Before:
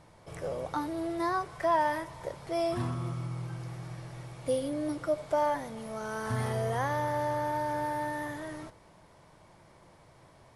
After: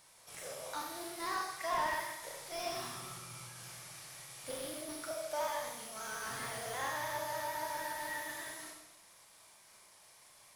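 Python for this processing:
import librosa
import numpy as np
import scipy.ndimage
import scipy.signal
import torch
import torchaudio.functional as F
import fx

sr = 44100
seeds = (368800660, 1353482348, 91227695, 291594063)

y = fx.pitch_trill(x, sr, semitones=1.0, every_ms=74)
y = F.preemphasis(torch.from_numpy(y), 0.97).numpy()
y = fx.rev_schroeder(y, sr, rt60_s=0.87, comb_ms=29, drr_db=-0.5)
y = fx.slew_limit(y, sr, full_power_hz=16.0)
y = y * librosa.db_to_amplitude(8.0)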